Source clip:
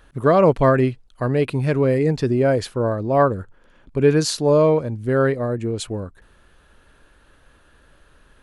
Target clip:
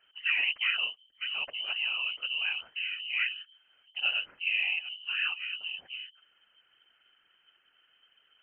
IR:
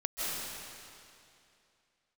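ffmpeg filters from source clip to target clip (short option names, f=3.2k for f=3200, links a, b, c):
-af "lowpass=f=2.6k:t=q:w=0.5098,lowpass=f=2.6k:t=q:w=0.6013,lowpass=f=2.6k:t=q:w=0.9,lowpass=f=2.6k:t=q:w=2.563,afreqshift=-3100,highshelf=f=2.1k:g=-5.5,afftfilt=real='hypot(re,im)*cos(2*PI*random(0))':imag='hypot(re,im)*sin(2*PI*random(1))':win_size=512:overlap=0.75,volume=-5dB"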